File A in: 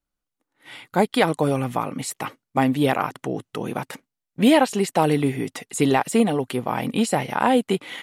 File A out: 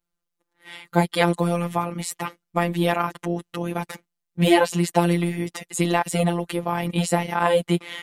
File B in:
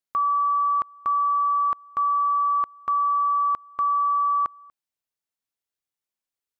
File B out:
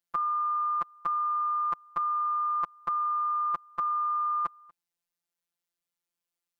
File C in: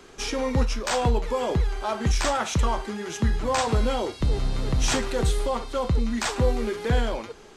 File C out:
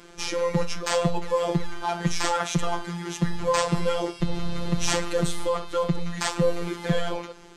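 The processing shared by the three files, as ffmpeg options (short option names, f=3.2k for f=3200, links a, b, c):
-af "equalizer=f=130:w=1.3:g=2.5,afftfilt=real='hypot(re,im)*cos(PI*b)':imag='0':win_size=1024:overlap=0.75,volume=3.5dB"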